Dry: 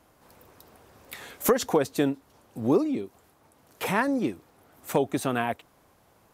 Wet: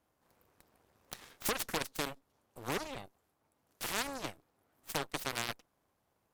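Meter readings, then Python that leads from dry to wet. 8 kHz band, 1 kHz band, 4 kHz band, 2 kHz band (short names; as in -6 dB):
-3.5 dB, -10.0 dB, 0.0 dB, -6.5 dB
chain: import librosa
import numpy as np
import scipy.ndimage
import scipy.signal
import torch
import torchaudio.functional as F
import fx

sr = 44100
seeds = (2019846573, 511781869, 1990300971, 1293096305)

y = fx.cheby_harmonics(x, sr, harmonics=(3, 7, 8), levels_db=(-24, -18, -19), full_scale_db=-10.0)
y = fx.spectral_comp(y, sr, ratio=2.0)
y = y * 10.0 ** (-8.0 / 20.0)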